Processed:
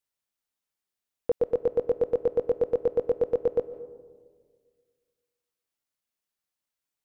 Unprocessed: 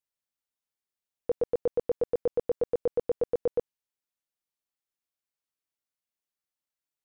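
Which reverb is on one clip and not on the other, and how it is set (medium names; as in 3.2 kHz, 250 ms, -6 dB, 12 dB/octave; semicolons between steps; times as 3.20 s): algorithmic reverb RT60 1.7 s, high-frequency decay 0.25×, pre-delay 105 ms, DRR 15.5 dB; trim +3 dB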